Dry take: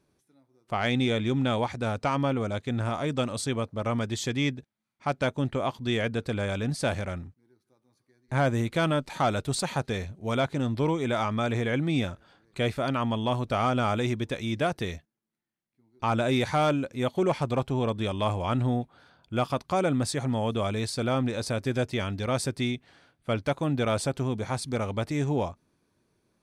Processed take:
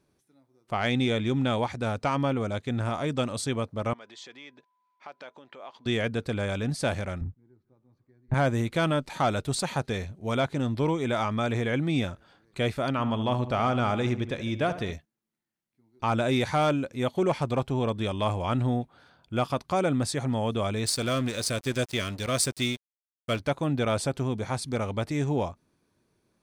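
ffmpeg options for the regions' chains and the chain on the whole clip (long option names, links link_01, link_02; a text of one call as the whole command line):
ffmpeg -i in.wav -filter_complex "[0:a]asettb=1/sr,asplit=3[link_01][link_02][link_03];[link_01]atrim=end=3.934[link_04];[link_02]atrim=start=3.93:end=5.86,asetpts=PTS-STARTPTS,afade=type=in:duration=0.004:curve=qsin,afade=type=out:start_time=1.926:duration=0.004:curve=qsin,acompressor=threshold=-36dB:ratio=10:attack=3.2:release=140:knee=1:detection=peak,aeval=exprs='val(0)+0.000282*sin(2*PI*1000*n/s)':channel_layout=same,highpass=510,lowpass=4600[link_05];[link_03]atrim=start=5.856[link_06];[link_04][link_05]acrossfade=duration=0.004:curve1=hsin:curve2=qsin[link_07];[link_07][link_06]acrossfade=duration=0.004:curve1=qsin:curve2=hsin,asettb=1/sr,asplit=3[link_08][link_09][link_10];[link_08]atrim=end=7.214[link_11];[link_09]atrim=start=7.21:end=8.34,asetpts=PTS-STARTPTS,afade=type=in:duration=0.004:curve=qsin,afade=type=out:start_time=1.126:duration=0.004:curve=qsin,lowpass=frequency=1700:poles=1,aemphasis=mode=reproduction:type=bsi[link_12];[link_10]atrim=start=8.336[link_13];[link_11][link_12]acrossfade=duration=0.004:curve1=hsin:curve2=qsin[link_14];[link_14][link_13]acrossfade=duration=0.004:curve1=qsin:curve2=hsin,asettb=1/sr,asplit=3[link_15][link_16][link_17];[link_15]atrim=end=12.914[link_18];[link_16]atrim=start=12.91:end=14.93,asetpts=PTS-STARTPTS,afade=type=in:duration=0.004:curve=qsin,afade=type=out:start_time=2.016:duration=0.004:curve=qsin,highshelf=frequency=7800:gain=-10.5,asplit=2[link_19][link_20];[link_20]adelay=73,lowpass=frequency=3100:poles=1,volume=-12dB,asplit=2[link_21][link_22];[link_22]adelay=73,lowpass=frequency=3100:poles=1,volume=0.46,asplit=2[link_23][link_24];[link_24]adelay=73,lowpass=frequency=3100:poles=1,volume=0.46,asplit=2[link_25][link_26];[link_26]adelay=73,lowpass=frequency=3100:poles=1,volume=0.46,asplit=2[link_27][link_28];[link_28]adelay=73,lowpass=frequency=3100:poles=1,volume=0.46[link_29];[link_19][link_21][link_23][link_25][link_27][link_29]amix=inputs=6:normalize=0,atrim=end_sample=89082[link_30];[link_17]atrim=start=14.926[link_31];[link_18][link_30]acrossfade=duration=0.004:curve1=hsin:curve2=qsin[link_32];[link_32][link_31]acrossfade=duration=0.004:curve1=qsin:curve2=hsin,asettb=1/sr,asplit=3[link_33][link_34][link_35];[link_33]atrim=end=20.864[link_36];[link_34]atrim=start=20.86:end=23.4,asetpts=PTS-STARTPTS,afade=type=in:duration=0.004:curve=qsin,afade=type=out:start_time=2.536:duration=0.004:curve=qsin,asuperstop=centerf=850:order=20:qfactor=3.9,highshelf=frequency=3200:gain=11.5,aeval=exprs='sgn(val(0))*max(abs(val(0))-0.01,0)':channel_layout=same[link_37];[link_35]atrim=start=23.396[link_38];[link_36][link_37]acrossfade=duration=0.004:curve1=hsin:curve2=qsin[link_39];[link_39][link_38]acrossfade=duration=0.004:curve1=qsin:curve2=hsin" out.wav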